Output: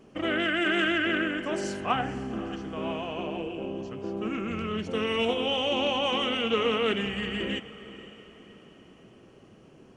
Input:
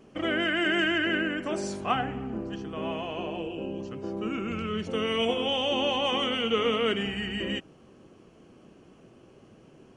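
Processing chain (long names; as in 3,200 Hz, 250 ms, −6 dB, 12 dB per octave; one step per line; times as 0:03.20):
feedback delay with all-pass diffusion 519 ms, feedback 42%, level −15.5 dB
highs frequency-modulated by the lows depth 0.11 ms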